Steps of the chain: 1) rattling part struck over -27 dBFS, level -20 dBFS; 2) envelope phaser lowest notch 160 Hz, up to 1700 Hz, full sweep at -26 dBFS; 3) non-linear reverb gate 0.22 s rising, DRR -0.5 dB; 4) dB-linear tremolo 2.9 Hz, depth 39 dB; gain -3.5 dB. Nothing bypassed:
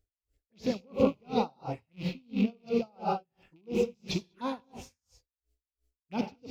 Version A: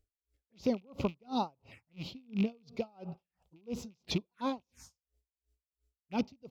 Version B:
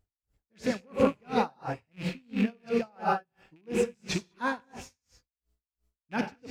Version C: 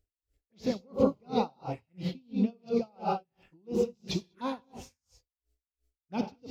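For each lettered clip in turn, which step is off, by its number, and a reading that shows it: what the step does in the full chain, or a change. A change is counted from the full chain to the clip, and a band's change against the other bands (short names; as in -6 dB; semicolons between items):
3, momentary loudness spread change +2 LU; 2, 2 kHz band +8.5 dB; 1, 2 kHz band -4.0 dB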